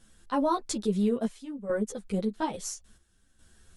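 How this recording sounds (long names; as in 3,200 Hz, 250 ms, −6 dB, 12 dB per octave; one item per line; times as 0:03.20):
chopped level 0.59 Hz, depth 65%, duty 75%
a shimmering, thickened sound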